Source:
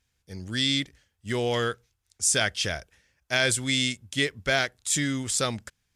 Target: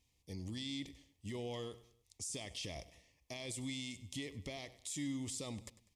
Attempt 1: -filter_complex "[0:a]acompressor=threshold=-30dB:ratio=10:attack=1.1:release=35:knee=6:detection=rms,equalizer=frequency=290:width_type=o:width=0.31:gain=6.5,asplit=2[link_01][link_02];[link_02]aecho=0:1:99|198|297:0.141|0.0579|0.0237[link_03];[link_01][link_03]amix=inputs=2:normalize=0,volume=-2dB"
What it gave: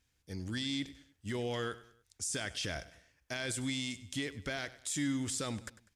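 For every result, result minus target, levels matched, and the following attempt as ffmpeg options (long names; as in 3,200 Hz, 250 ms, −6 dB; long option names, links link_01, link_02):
downward compressor: peak gain reduction −6.5 dB; 2,000 Hz band +4.5 dB
-filter_complex "[0:a]acompressor=threshold=-37dB:ratio=10:attack=1.1:release=35:knee=6:detection=rms,equalizer=frequency=290:width_type=o:width=0.31:gain=6.5,asplit=2[link_01][link_02];[link_02]aecho=0:1:99|198|297:0.141|0.0579|0.0237[link_03];[link_01][link_03]amix=inputs=2:normalize=0,volume=-2dB"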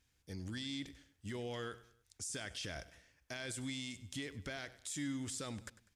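2,000 Hz band +4.5 dB
-filter_complex "[0:a]acompressor=threshold=-37dB:ratio=10:attack=1.1:release=35:knee=6:detection=rms,asuperstop=centerf=1500:order=4:qfactor=1.8,equalizer=frequency=290:width_type=o:width=0.31:gain=6.5,asplit=2[link_01][link_02];[link_02]aecho=0:1:99|198|297:0.141|0.0579|0.0237[link_03];[link_01][link_03]amix=inputs=2:normalize=0,volume=-2dB"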